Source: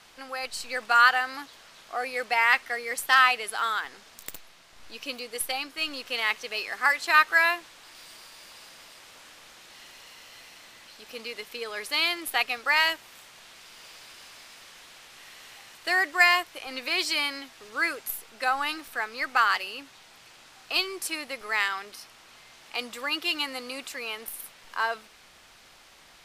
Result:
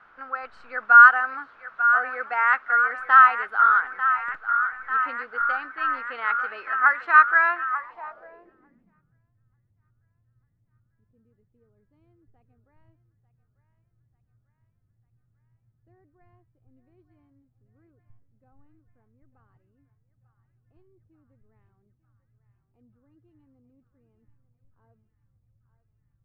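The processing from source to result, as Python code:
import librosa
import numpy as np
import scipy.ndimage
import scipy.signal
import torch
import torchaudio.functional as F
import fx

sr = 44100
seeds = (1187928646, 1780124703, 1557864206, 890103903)

y = fx.low_shelf(x, sr, hz=160.0, db=-6.5, at=(2.17, 2.99))
y = fx.echo_banded(y, sr, ms=893, feedback_pct=83, hz=1600.0, wet_db=-9.0)
y = fx.filter_sweep_lowpass(y, sr, from_hz=1400.0, to_hz=110.0, start_s=7.69, end_s=9.24, q=6.3)
y = y * 10.0 ** (-5.0 / 20.0)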